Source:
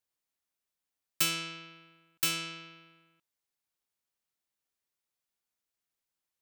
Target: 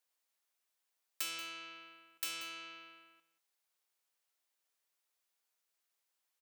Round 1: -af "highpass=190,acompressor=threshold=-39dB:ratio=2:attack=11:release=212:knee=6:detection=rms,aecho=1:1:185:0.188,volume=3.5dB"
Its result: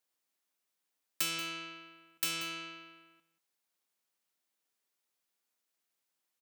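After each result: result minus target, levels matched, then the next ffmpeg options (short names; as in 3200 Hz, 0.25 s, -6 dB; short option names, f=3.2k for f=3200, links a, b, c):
250 Hz band +6.0 dB; compressor: peak gain reduction -5.5 dB
-af "highpass=450,acompressor=threshold=-39dB:ratio=2:attack=11:release=212:knee=6:detection=rms,aecho=1:1:185:0.188,volume=3.5dB"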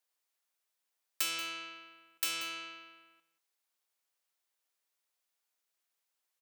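compressor: peak gain reduction -5.5 dB
-af "highpass=450,acompressor=threshold=-50.5dB:ratio=2:attack=11:release=212:knee=6:detection=rms,aecho=1:1:185:0.188,volume=3.5dB"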